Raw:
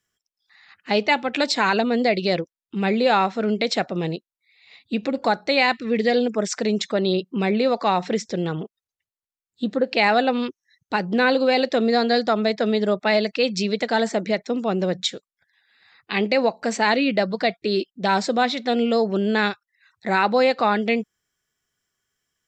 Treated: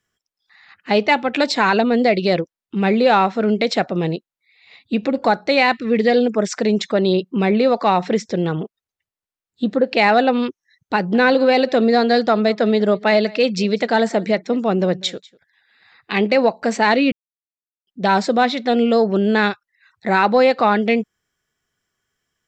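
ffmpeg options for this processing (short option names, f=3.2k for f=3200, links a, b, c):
-filter_complex "[0:a]asettb=1/sr,asplit=3[a][b][c];[a]atrim=end=10.954[d];[b]atrim=start=10.95:end=16.38,asetpts=PTS-STARTPTS,afade=t=in:d=0.004:c=qsin,afade=t=out:st=5.426:d=0.004:c=qsin,aecho=1:1:195:0.0668,atrim=end_sample=239463[e];[c]atrim=start=16.376[f];[d][e]acrossfade=d=0.004:c1=hsin:c2=qsin[g];[g][f]acrossfade=d=0.004:c1=qsin:c2=hsin,asplit=3[h][i][j];[h]atrim=end=17.12,asetpts=PTS-STARTPTS,afade=t=out:st=17.116:d=0.004:c=hsin[k];[i]atrim=start=17.12:end=17.87,asetpts=PTS-STARTPTS,volume=0[l];[j]atrim=start=17.87,asetpts=PTS-STARTPTS,afade=t=in:d=0.004:c=hsin[m];[k][l][m]concat=n=3:v=0:a=1,highshelf=f=3.7k:g=-7,acontrast=24"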